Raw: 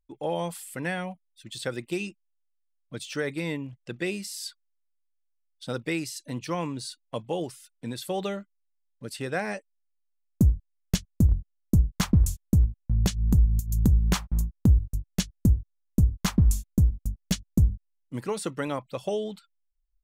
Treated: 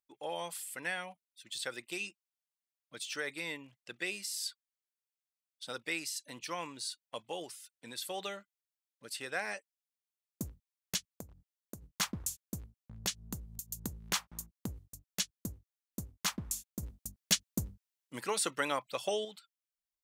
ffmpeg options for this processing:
ffmpeg -i in.wav -filter_complex "[0:a]asplit=3[link_01][link_02][link_03];[link_01]afade=type=out:start_time=11.07:duration=0.02[link_04];[link_02]acompressor=threshold=-24dB:ratio=12:attack=3.2:release=140:knee=1:detection=peak,afade=type=in:start_time=11.07:duration=0.02,afade=type=out:start_time=11.81:duration=0.02[link_05];[link_03]afade=type=in:start_time=11.81:duration=0.02[link_06];[link_04][link_05][link_06]amix=inputs=3:normalize=0,asplit=3[link_07][link_08][link_09];[link_07]atrim=end=16.832[link_10];[link_08]atrim=start=16.828:end=19.252,asetpts=PTS-STARTPTS,volume=6dB[link_11];[link_09]atrim=start=19.248[link_12];[link_10][link_11]acrossfade=duration=0.004:curve1=hsin:curve2=hsin[link_13];[link_13][link_12]acrossfade=duration=0.004:curve1=hsin:curve2=hsin,highpass=frequency=1500:poles=1,volume=-1dB" out.wav

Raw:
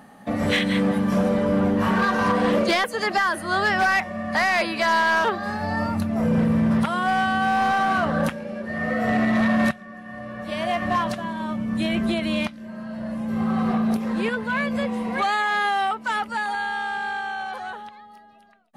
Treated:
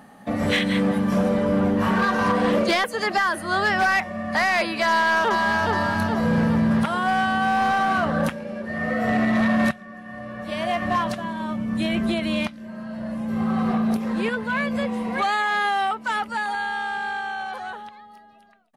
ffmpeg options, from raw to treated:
ffmpeg -i in.wav -filter_complex "[0:a]asplit=2[link_01][link_02];[link_02]afade=type=in:start_time=4.88:duration=0.01,afade=type=out:start_time=5.72:duration=0.01,aecho=0:1:420|840|1260|1680|2100|2520|2940|3360:0.707946|0.38937|0.214154|0.117784|0.0647815|0.0356298|0.0195964|0.010778[link_03];[link_01][link_03]amix=inputs=2:normalize=0" out.wav

